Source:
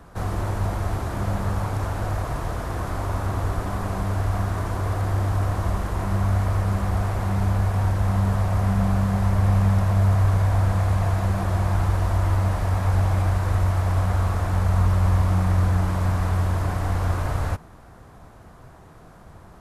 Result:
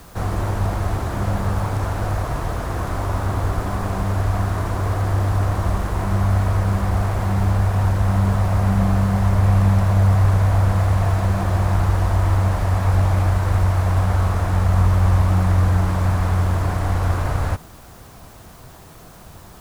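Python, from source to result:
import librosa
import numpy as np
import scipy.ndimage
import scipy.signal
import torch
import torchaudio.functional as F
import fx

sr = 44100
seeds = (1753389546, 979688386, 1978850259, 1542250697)

y = fx.dmg_noise_colour(x, sr, seeds[0], colour='white', level_db=-53.0)
y = fx.doppler_dist(y, sr, depth_ms=0.26)
y = y * 10.0 ** (3.5 / 20.0)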